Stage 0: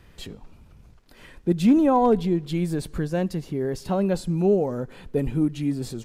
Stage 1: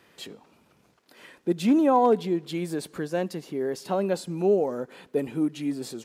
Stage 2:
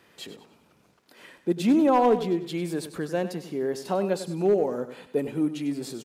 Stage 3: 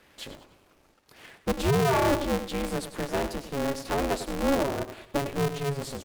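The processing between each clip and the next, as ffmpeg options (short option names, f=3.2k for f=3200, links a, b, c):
-af "highpass=280"
-af "asoftclip=type=hard:threshold=-14dB,aecho=1:1:98|196|294|392:0.251|0.0929|0.0344|0.0127"
-af "asoftclip=type=tanh:threshold=-18.5dB,aeval=exprs='val(0)*sgn(sin(2*PI*140*n/s))':c=same"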